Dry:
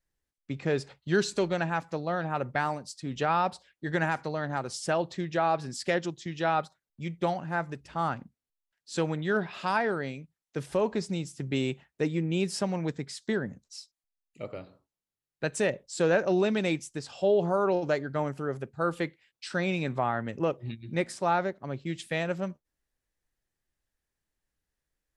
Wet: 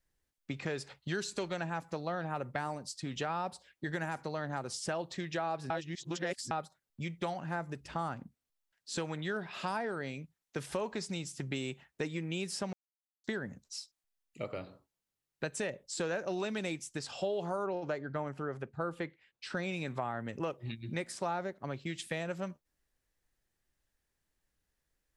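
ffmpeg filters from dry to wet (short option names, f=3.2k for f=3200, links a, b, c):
-filter_complex "[0:a]asettb=1/sr,asplit=3[a][b][c];[a]atrim=end=17.664[d];[b]atrim=start=17.66:end=19.57,asetpts=PTS-STARTPTS,afade=t=in:d=0.004:c=qsin,afade=t=out:st=1.906:d=0.004:c=qsin,lowpass=f=2.1k:p=1[e];[c]atrim=start=19.566[f];[d][e]acrossfade=d=0.004:c1=hsin:c2=qsin[g];[g][f]acrossfade=d=0.004:c1=qsin:c2=hsin,asplit=5[h][i][j][k][l];[h]atrim=end=5.702[m];[i]atrim=start=5.698:end=6.512,asetpts=PTS-STARTPTS,areverse[n];[j]atrim=start=6.508:end=12.73,asetpts=PTS-STARTPTS,afade=t=out:st=6.218:d=0.004:c=hsin[o];[k]atrim=start=12.73:end=13.24,asetpts=PTS-STARTPTS,volume=0[p];[l]atrim=start=13.24,asetpts=PTS-STARTPTS,afade=t=in:d=0.004:c=hsin[q];[m][n]acrossfade=d=0.004:c1=hsin:c2=hsin[r];[o][p][q]concat=n=3:v=0:a=1[s];[r][s]acrossfade=d=0.004:c1=hsin:c2=hsin,acrossover=split=820|7600[t][u][v];[t]acompressor=threshold=-40dB:ratio=4[w];[u]acompressor=threshold=-43dB:ratio=4[x];[v]acompressor=threshold=-50dB:ratio=4[y];[w][x][y]amix=inputs=3:normalize=0,volume=2.5dB"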